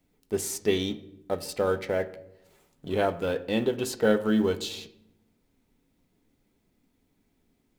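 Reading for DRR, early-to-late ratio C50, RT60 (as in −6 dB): 10.0 dB, 16.0 dB, 0.80 s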